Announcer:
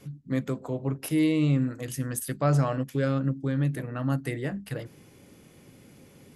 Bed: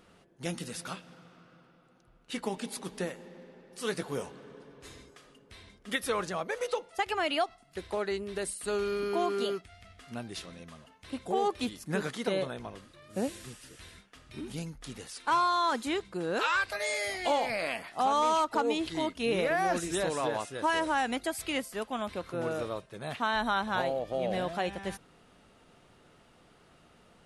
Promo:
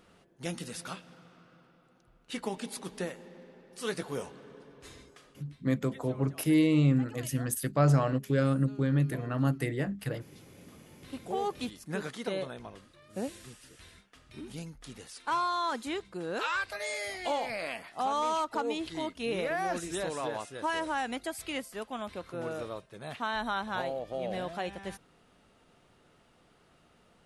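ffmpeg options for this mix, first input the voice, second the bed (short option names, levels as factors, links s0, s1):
-filter_complex "[0:a]adelay=5350,volume=0.944[s0];[1:a]volume=6.68,afade=t=out:st=5.24:d=0.38:silence=0.1,afade=t=in:st=10.43:d=0.72:silence=0.133352[s1];[s0][s1]amix=inputs=2:normalize=0"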